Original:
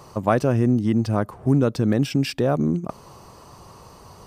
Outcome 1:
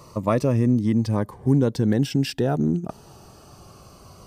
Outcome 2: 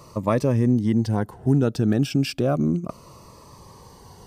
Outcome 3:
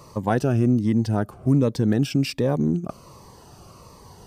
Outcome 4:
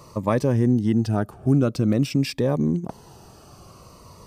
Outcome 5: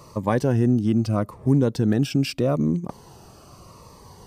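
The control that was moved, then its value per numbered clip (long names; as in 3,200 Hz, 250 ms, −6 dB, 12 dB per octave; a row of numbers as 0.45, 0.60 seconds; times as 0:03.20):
phaser whose notches keep moving one way, speed: 0.2, 0.33, 1.3, 0.49, 0.8 Hertz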